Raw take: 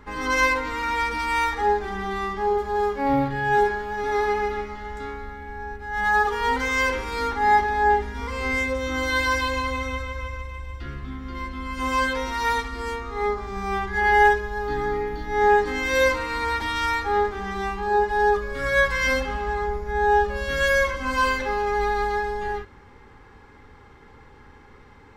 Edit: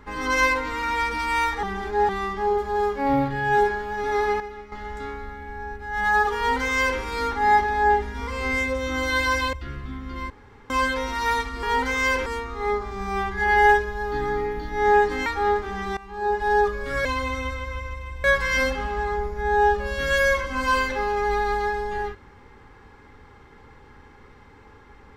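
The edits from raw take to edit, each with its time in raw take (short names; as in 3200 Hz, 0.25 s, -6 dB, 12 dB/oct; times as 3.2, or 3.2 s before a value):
1.63–2.09 reverse
4.4–4.72 gain -10 dB
6.37–7 copy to 12.82
9.53–10.72 move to 18.74
11.49–11.89 room tone
15.82–16.95 cut
17.66–18.16 fade in linear, from -19.5 dB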